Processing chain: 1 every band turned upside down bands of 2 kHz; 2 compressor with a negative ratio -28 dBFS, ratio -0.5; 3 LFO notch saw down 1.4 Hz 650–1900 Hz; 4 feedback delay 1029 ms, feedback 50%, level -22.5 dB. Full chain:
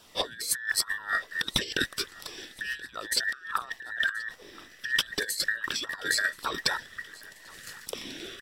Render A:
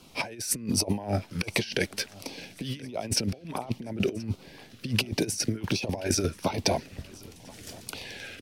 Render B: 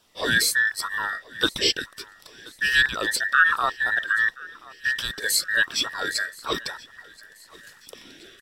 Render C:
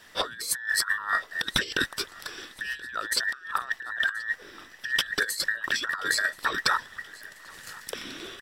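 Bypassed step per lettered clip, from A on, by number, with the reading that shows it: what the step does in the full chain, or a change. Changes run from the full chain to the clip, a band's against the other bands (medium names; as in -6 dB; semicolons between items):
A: 1, 125 Hz band +16.5 dB; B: 2, crest factor change -5.5 dB; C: 3, 1 kHz band +4.5 dB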